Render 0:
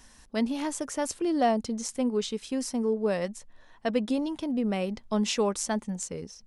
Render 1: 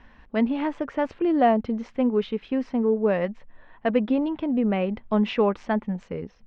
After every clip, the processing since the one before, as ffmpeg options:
ffmpeg -i in.wav -af "lowpass=frequency=2700:width=0.5412,lowpass=frequency=2700:width=1.3066,volume=5dB" out.wav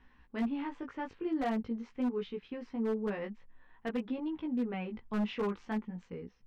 ffmpeg -i in.wav -af "equalizer=frequency=620:width=4.1:gain=-11.5,flanger=delay=16:depth=3.4:speed=0.46,aeval=exprs='0.119*(abs(mod(val(0)/0.119+3,4)-2)-1)':channel_layout=same,volume=-7.5dB" out.wav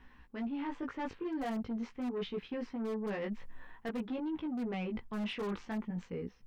ffmpeg -i in.wav -af "dynaudnorm=framelen=200:gausssize=7:maxgain=6.5dB,aeval=exprs='0.112*(cos(1*acos(clip(val(0)/0.112,-1,1)))-cos(1*PI/2))+0.0141*(cos(5*acos(clip(val(0)/0.112,-1,1)))-cos(5*PI/2))':channel_layout=same,areverse,acompressor=threshold=-36dB:ratio=5,areverse" out.wav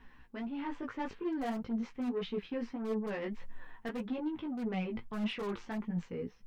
ffmpeg -i in.wav -af "flanger=delay=4.1:depth=4.8:regen=52:speed=1.7:shape=triangular,volume=4.5dB" out.wav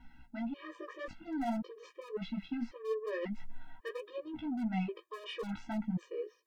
ffmpeg -i in.wav -af "afftfilt=real='re*gt(sin(2*PI*0.92*pts/sr)*(1-2*mod(floor(b*sr/1024/320),2)),0)':imag='im*gt(sin(2*PI*0.92*pts/sr)*(1-2*mod(floor(b*sr/1024/320),2)),0)':win_size=1024:overlap=0.75,volume=2dB" out.wav

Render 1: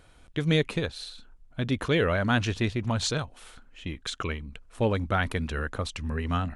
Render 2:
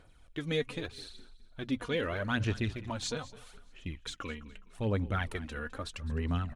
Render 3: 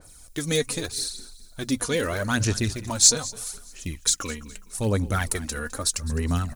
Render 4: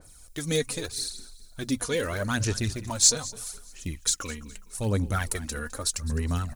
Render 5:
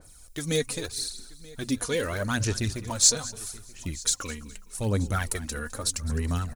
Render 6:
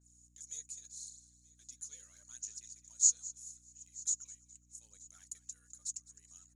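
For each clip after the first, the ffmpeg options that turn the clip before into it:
ffmpeg -i in.wav -filter_complex "[0:a]bandreject=frequency=60:width_type=h:width=6,bandreject=frequency=120:width_type=h:width=6,aphaser=in_gain=1:out_gain=1:delay=4.2:decay=0.56:speed=0.8:type=sinusoidal,asplit=4[link_01][link_02][link_03][link_04];[link_02]adelay=208,afreqshift=-31,volume=-18dB[link_05];[link_03]adelay=416,afreqshift=-62,volume=-26.9dB[link_06];[link_04]adelay=624,afreqshift=-93,volume=-35.7dB[link_07];[link_01][link_05][link_06][link_07]amix=inputs=4:normalize=0,volume=-9dB" out.wav
ffmpeg -i in.wav -af "aexciter=amount=9.9:drive=5.4:freq=4600,adynamicequalizer=threshold=0.00631:dfrequency=2500:dqfactor=0.7:tfrequency=2500:tqfactor=0.7:attack=5:release=100:ratio=0.375:range=1.5:mode=cutabove:tftype=highshelf,volume=7dB" out.wav
ffmpeg -i in.wav -af "aphaser=in_gain=1:out_gain=1:delay=2.4:decay=0.25:speed=1.8:type=triangular,volume=-3.5dB" out.wav
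ffmpeg -i in.wav -af "aecho=1:1:931:0.0794" out.wav
ffmpeg -i in.wav -af "bandpass=frequency=6800:width_type=q:width=16:csg=0,aeval=exprs='val(0)+0.000398*(sin(2*PI*60*n/s)+sin(2*PI*2*60*n/s)/2+sin(2*PI*3*60*n/s)/3+sin(2*PI*4*60*n/s)/4+sin(2*PI*5*60*n/s)/5)':channel_layout=same" out.wav

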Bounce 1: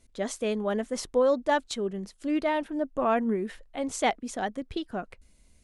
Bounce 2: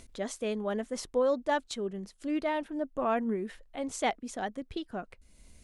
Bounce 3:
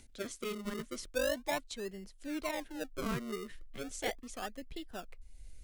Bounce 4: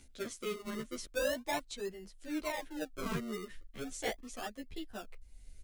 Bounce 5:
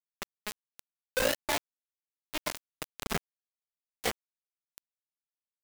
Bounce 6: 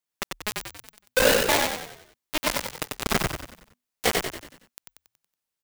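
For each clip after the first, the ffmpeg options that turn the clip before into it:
ffmpeg -i in.wav -af "acompressor=mode=upward:threshold=-39dB:ratio=2.5,volume=-4dB" out.wav
ffmpeg -i in.wav -filter_complex "[0:a]asubboost=boost=8.5:cutoff=51,acrossover=split=290|1200[link_01][link_02][link_03];[link_01]asoftclip=type=tanh:threshold=-36.5dB[link_04];[link_02]acrusher=samples=36:mix=1:aa=0.000001:lfo=1:lforange=36:lforate=0.37[link_05];[link_04][link_05][link_03]amix=inputs=3:normalize=0,volume=-5dB" out.wav
ffmpeg -i in.wav -filter_complex "[0:a]asplit=2[link_01][link_02];[link_02]adelay=11.4,afreqshift=-2.4[link_03];[link_01][link_03]amix=inputs=2:normalize=1,volume=2.5dB" out.wav
ffmpeg -i in.wav -af "acrusher=bits=4:mix=0:aa=0.000001,volume=3.5dB" out.wav
ffmpeg -i in.wav -filter_complex "[0:a]asplit=7[link_01][link_02][link_03][link_04][link_05][link_06][link_07];[link_02]adelay=93,afreqshift=-41,volume=-3dB[link_08];[link_03]adelay=186,afreqshift=-82,volume=-9.7dB[link_09];[link_04]adelay=279,afreqshift=-123,volume=-16.5dB[link_10];[link_05]adelay=372,afreqshift=-164,volume=-23.2dB[link_11];[link_06]adelay=465,afreqshift=-205,volume=-30dB[link_12];[link_07]adelay=558,afreqshift=-246,volume=-36.7dB[link_13];[link_01][link_08][link_09][link_10][link_11][link_12][link_13]amix=inputs=7:normalize=0,volume=8dB" out.wav

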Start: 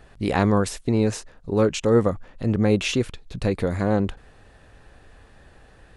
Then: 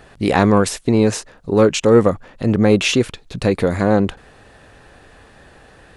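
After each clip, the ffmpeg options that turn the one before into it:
ffmpeg -i in.wav -af "lowshelf=frequency=79:gain=-11.5,acontrast=50,volume=2dB" out.wav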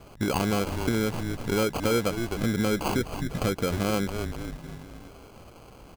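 ffmpeg -i in.wav -filter_complex "[0:a]asplit=6[link_01][link_02][link_03][link_04][link_05][link_06];[link_02]adelay=257,afreqshift=-120,volume=-11.5dB[link_07];[link_03]adelay=514,afreqshift=-240,volume=-18.1dB[link_08];[link_04]adelay=771,afreqshift=-360,volume=-24.6dB[link_09];[link_05]adelay=1028,afreqshift=-480,volume=-31.2dB[link_10];[link_06]adelay=1285,afreqshift=-600,volume=-37.7dB[link_11];[link_01][link_07][link_08][link_09][link_10][link_11]amix=inputs=6:normalize=0,acompressor=threshold=-22dB:ratio=3,acrusher=samples=24:mix=1:aa=0.000001,volume=-3dB" out.wav

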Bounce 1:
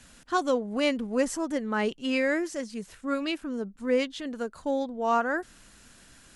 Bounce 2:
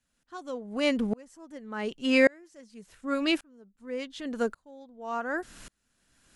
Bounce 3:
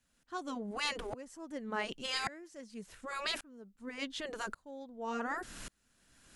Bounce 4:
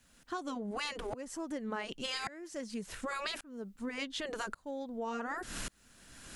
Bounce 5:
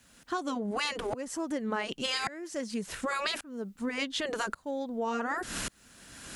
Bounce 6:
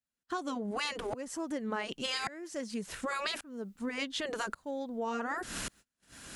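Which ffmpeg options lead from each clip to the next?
ffmpeg -i in.wav -af "aeval=exprs='val(0)*pow(10,-35*if(lt(mod(-0.88*n/s,1),2*abs(-0.88)/1000),1-mod(-0.88*n/s,1)/(2*abs(-0.88)/1000),(mod(-0.88*n/s,1)-2*abs(-0.88)/1000)/(1-2*abs(-0.88)/1000))/20)':channel_layout=same,volume=8dB" out.wav
ffmpeg -i in.wav -af "afftfilt=real='re*lt(hypot(re,im),0.126)':imag='im*lt(hypot(re,im),0.126)':win_size=1024:overlap=0.75,volume=1.5dB" out.wav
ffmpeg -i in.wav -af "acompressor=threshold=-47dB:ratio=6,volume=11dB" out.wav
ffmpeg -i in.wav -af "highpass=frequency=68:poles=1,volume=6dB" out.wav
ffmpeg -i in.wav -af "agate=range=-32dB:threshold=-50dB:ratio=16:detection=peak,volume=-3dB" out.wav

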